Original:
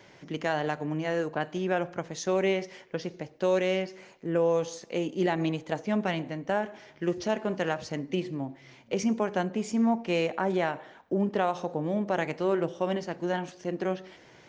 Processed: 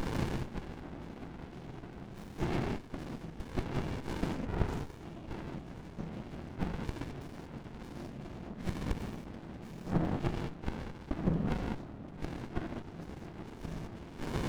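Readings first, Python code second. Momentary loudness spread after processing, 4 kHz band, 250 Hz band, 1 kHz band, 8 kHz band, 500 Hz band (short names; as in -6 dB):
12 LU, -10.5 dB, -8.0 dB, -11.5 dB, n/a, -15.5 dB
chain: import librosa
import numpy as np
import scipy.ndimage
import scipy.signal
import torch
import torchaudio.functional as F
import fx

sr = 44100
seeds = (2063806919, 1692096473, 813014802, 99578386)

y = fx.env_lowpass_down(x, sr, base_hz=2800.0, full_db=-21.5)
y = fx.peak_eq(y, sr, hz=2100.0, db=5.0, octaves=1.8)
y = fx.over_compress(y, sr, threshold_db=-33.0, ratio=-0.5)
y = np.clip(y, -10.0 ** (-31.0 / 20.0), 10.0 ** (-31.0 / 20.0))
y = fx.whisperise(y, sr, seeds[0])
y = fx.gate_flip(y, sr, shuts_db=-31.0, range_db=-24)
y = fx.rev_gated(y, sr, seeds[1], gate_ms=240, shape='flat', drr_db=-3.0)
y = fx.running_max(y, sr, window=65)
y = F.gain(torch.from_numpy(y), 13.0).numpy()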